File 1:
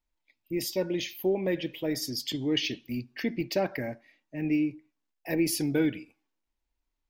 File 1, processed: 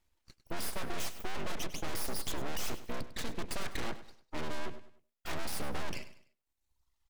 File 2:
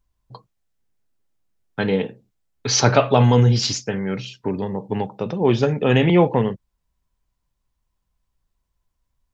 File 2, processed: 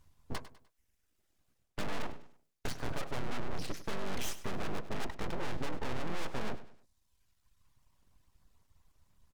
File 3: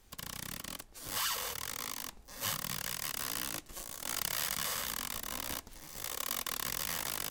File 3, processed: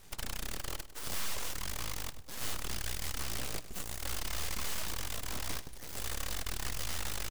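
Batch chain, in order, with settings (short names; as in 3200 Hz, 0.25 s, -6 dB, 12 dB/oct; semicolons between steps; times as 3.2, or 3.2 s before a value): octaver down 2 oct, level -6 dB; treble ducked by the level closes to 770 Hz, closed at -16.5 dBFS; reverb removal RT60 1.1 s; reverse; compressor 6:1, threshold -31 dBFS; reverse; tube stage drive 42 dB, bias 0.65; full-wave rectifier; on a send: feedback echo 0.1 s, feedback 36%, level -14.5 dB; on the sum: gain +13 dB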